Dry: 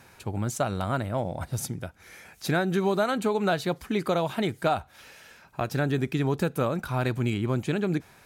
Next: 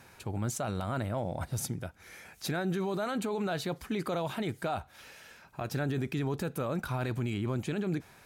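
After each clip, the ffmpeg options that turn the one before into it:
ffmpeg -i in.wav -af "alimiter=limit=-22.5dB:level=0:latency=1:release=12,volume=-2dB" out.wav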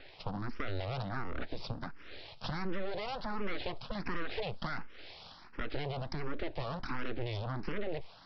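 ffmpeg -i in.wav -filter_complex "[0:a]aresample=11025,aeval=exprs='abs(val(0))':channel_layout=same,aresample=44100,acompressor=threshold=-35dB:ratio=6,asplit=2[link_01][link_02];[link_02]afreqshift=1.4[link_03];[link_01][link_03]amix=inputs=2:normalize=1,volume=7.5dB" out.wav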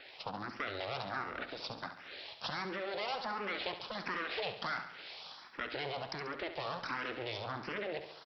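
ffmpeg -i in.wav -af "highpass=frequency=700:poles=1,aecho=1:1:69|138|207|276|345|414:0.316|0.174|0.0957|0.0526|0.0289|0.0159,volume=3.5dB" out.wav

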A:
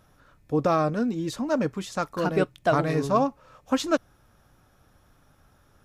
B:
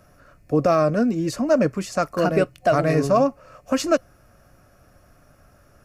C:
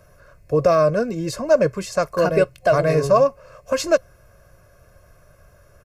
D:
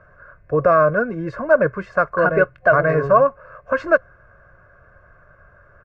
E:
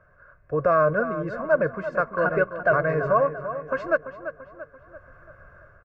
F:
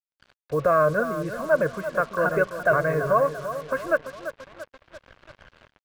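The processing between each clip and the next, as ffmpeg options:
ffmpeg -i in.wav -filter_complex "[0:a]superequalizer=8b=1.78:9b=0.562:13b=0.355,acrossover=split=100|2100[link_01][link_02][link_03];[link_02]alimiter=limit=-14.5dB:level=0:latency=1[link_04];[link_01][link_04][link_03]amix=inputs=3:normalize=0,volume=5.5dB" out.wav
ffmpeg -i in.wav -af "aecho=1:1:1.9:0.69" out.wav
ffmpeg -i in.wav -af "lowpass=frequency=1500:width_type=q:width=3.9,volume=-1dB" out.wav
ffmpeg -i in.wav -filter_complex "[0:a]dynaudnorm=framelen=430:gausssize=3:maxgain=9dB,asplit=2[link_01][link_02];[link_02]adelay=339,lowpass=frequency=3200:poles=1,volume=-11dB,asplit=2[link_03][link_04];[link_04]adelay=339,lowpass=frequency=3200:poles=1,volume=0.5,asplit=2[link_05][link_06];[link_06]adelay=339,lowpass=frequency=3200:poles=1,volume=0.5,asplit=2[link_07][link_08];[link_08]adelay=339,lowpass=frequency=3200:poles=1,volume=0.5,asplit=2[link_09][link_10];[link_10]adelay=339,lowpass=frequency=3200:poles=1,volume=0.5[link_11];[link_03][link_05][link_07][link_09][link_11]amix=inputs=5:normalize=0[link_12];[link_01][link_12]amix=inputs=2:normalize=0,volume=-8dB" out.wav
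ffmpeg -i in.wav -af "acrusher=bits=6:mix=0:aa=0.5" out.wav

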